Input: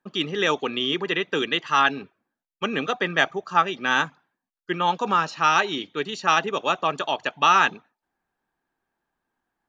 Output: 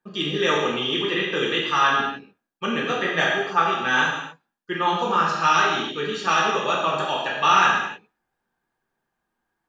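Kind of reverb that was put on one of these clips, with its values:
reverb whose tail is shaped and stops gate 320 ms falling, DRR −5 dB
level −4.5 dB

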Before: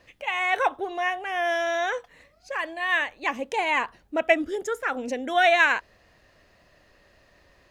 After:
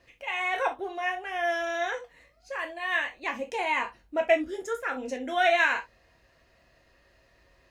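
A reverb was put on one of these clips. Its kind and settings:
reverb whose tail is shaped and stops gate 90 ms falling, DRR 2 dB
level −6 dB

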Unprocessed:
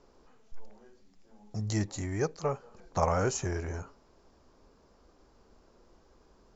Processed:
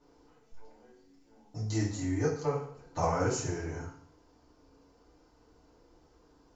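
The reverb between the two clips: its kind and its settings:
feedback delay network reverb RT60 0.57 s, low-frequency decay 1.1×, high-frequency decay 0.95×, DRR −8.5 dB
level −10 dB

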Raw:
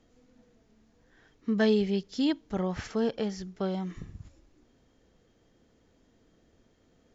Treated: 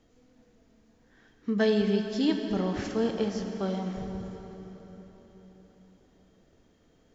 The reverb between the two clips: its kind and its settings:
dense smooth reverb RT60 4.5 s, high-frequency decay 0.75×, DRR 4 dB

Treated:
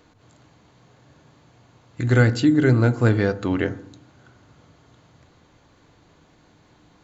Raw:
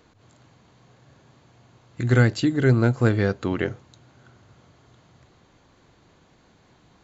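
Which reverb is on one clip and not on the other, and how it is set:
feedback delay network reverb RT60 0.68 s, low-frequency decay 1.3×, high-frequency decay 0.25×, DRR 11.5 dB
level +1 dB

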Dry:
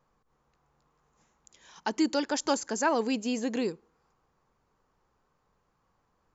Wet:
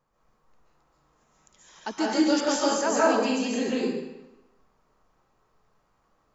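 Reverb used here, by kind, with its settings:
comb and all-pass reverb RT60 0.97 s, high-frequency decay 0.9×, pre-delay 100 ms, DRR −7.5 dB
level −3 dB

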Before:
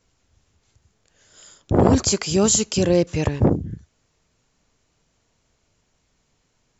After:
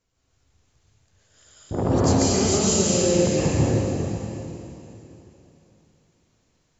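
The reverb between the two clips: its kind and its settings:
dense smooth reverb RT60 3.2 s, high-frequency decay 1×, pre-delay 110 ms, DRR −8.5 dB
level −10 dB

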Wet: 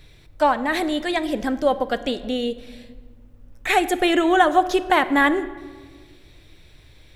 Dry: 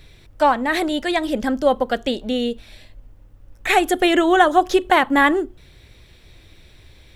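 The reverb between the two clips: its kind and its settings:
rectangular room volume 1,900 cubic metres, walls mixed, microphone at 0.45 metres
level −2.5 dB

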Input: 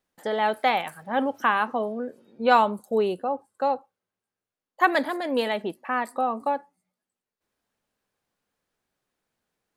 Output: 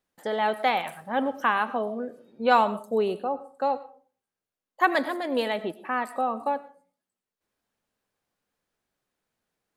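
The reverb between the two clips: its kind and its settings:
comb and all-pass reverb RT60 0.41 s, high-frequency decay 0.45×, pre-delay 60 ms, DRR 15 dB
level −1.5 dB

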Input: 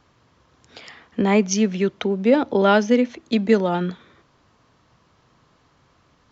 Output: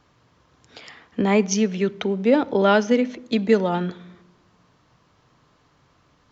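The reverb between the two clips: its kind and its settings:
rectangular room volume 3,100 cubic metres, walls furnished, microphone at 0.41 metres
level −1 dB

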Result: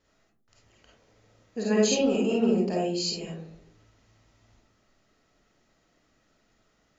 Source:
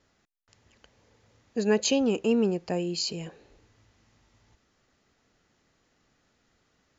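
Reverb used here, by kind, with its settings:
comb and all-pass reverb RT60 0.53 s, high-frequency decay 0.3×, pre-delay 10 ms, DRR −4.5 dB
level −4.5 dB

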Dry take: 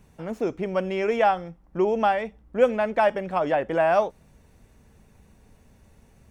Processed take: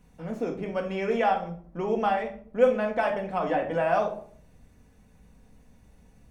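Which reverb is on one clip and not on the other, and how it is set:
rectangular room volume 590 cubic metres, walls furnished, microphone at 1.9 metres
level −5.5 dB

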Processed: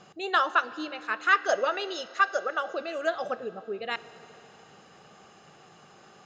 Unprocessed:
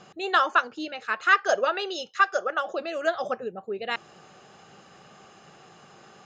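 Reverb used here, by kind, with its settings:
feedback delay network reverb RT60 3.5 s, high-frequency decay 0.95×, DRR 15 dB
level −2.5 dB

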